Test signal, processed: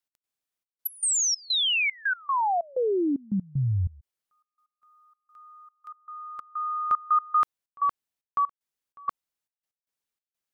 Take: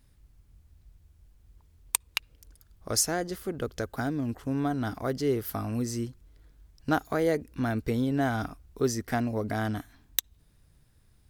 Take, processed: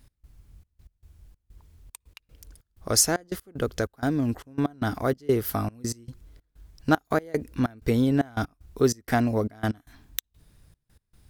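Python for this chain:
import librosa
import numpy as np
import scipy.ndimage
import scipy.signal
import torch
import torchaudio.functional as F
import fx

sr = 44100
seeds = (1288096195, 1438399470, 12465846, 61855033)

y = fx.step_gate(x, sr, bpm=190, pattern='x..xxxxx..x..xxx', floor_db=-24.0, edge_ms=4.5)
y = F.gain(torch.from_numpy(y), 5.5).numpy()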